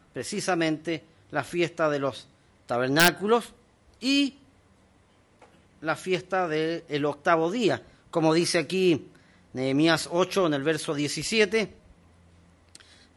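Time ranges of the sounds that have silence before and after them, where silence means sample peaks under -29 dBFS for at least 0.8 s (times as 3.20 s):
5.85–11.65 s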